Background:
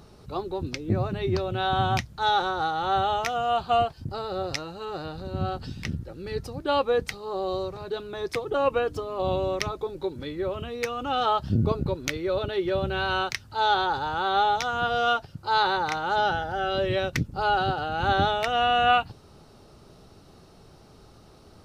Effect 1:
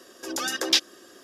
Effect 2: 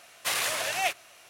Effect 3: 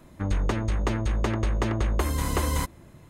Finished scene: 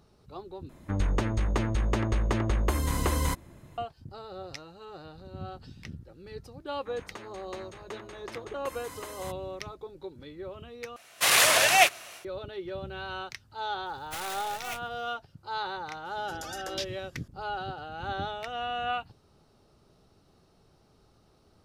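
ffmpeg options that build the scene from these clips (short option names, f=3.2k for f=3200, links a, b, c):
-filter_complex "[3:a]asplit=2[a][b];[2:a]asplit=2[c][d];[0:a]volume=-11dB[e];[b]highpass=f=690:p=1[f];[c]dynaudnorm=f=200:g=3:m=12.5dB[g];[d]acrusher=bits=5:dc=4:mix=0:aa=0.000001[h];[1:a]alimiter=limit=-10dB:level=0:latency=1:release=71[i];[e]asplit=3[j][k][l];[j]atrim=end=0.694[m];[a]atrim=end=3.09,asetpts=PTS-STARTPTS,volume=-1.5dB[n];[k]atrim=start=3.776:end=10.964[o];[g]atrim=end=1.29,asetpts=PTS-STARTPTS,volume=-2.5dB[p];[l]atrim=start=12.246[q];[f]atrim=end=3.09,asetpts=PTS-STARTPTS,volume=-11dB,afade=t=in:d=0.004:c=hsin,afade=t=out:st=3.086:d=0.004:c=hsin,adelay=293706S[r];[h]atrim=end=1.29,asetpts=PTS-STARTPTS,volume=-11dB,afade=t=in:d=0.004:c=hsin,afade=t=out:st=1.286:d=0.004:c=hsin,adelay=13860[s];[i]atrim=end=1.23,asetpts=PTS-STARTPTS,volume=-12.5dB,afade=t=in:d=0.004:c=hsin,afade=t=out:st=1.226:d=0.004:c=hsin,adelay=16050[t];[m][n]acrossfade=d=0.004:c1=hsin:c2=hsin[u];[u][o]acrossfade=d=0.004:c1=hsin:c2=hsin[v];[v][p]acrossfade=d=0.004:c1=hsin:c2=hsin[w];[w][q]acrossfade=d=0.004:c1=hsin:c2=hsin[x];[x][r][s][t]amix=inputs=4:normalize=0"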